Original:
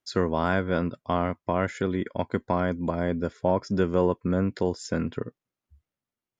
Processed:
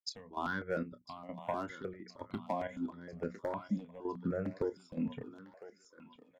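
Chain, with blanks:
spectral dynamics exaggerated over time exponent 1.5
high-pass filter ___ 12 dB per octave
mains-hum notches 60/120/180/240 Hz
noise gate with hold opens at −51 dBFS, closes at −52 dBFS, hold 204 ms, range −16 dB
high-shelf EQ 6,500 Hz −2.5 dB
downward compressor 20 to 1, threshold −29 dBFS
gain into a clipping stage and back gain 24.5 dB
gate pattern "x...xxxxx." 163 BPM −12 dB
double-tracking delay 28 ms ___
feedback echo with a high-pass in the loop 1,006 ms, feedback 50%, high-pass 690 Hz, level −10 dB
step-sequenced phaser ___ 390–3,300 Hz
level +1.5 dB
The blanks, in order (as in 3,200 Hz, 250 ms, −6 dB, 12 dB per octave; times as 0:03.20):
160 Hz, −12 dB, 6.5 Hz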